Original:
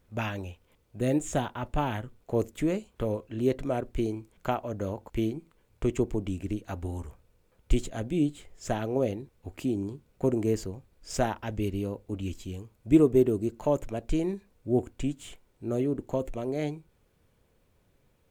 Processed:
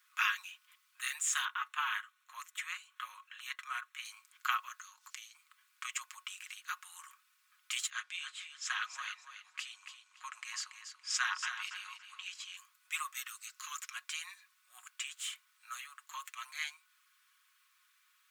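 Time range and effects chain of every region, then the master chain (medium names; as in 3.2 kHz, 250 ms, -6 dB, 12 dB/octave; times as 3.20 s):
1.45–4.05 s: treble shelf 4.3 kHz -7.5 dB + band-stop 4.8 kHz, Q 6
4.79–5.35 s: peaking EQ 6 kHz +12 dB 1.2 oct + compression 3:1, threshold -44 dBFS
7.90–12.57 s: low-pass 6.2 kHz + feedback delay 283 ms, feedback 22%, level -9 dB
13.14–13.96 s: steep high-pass 1.1 kHz 48 dB/octave + peaking EQ 5.5 kHz +6.5 dB 0.66 oct
whole clip: Chebyshev high-pass 1.1 kHz, order 6; comb 5.5 ms, depth 48%; trim +6 dB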